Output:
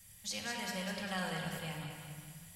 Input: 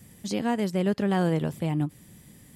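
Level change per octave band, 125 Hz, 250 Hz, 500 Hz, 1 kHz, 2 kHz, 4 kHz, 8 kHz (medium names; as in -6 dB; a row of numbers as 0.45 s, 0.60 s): -15.5 dB, -17.5 dB, -16.0 dB, -10.0 dB, -2.0 dB, 0.0 dB, +0.5 dB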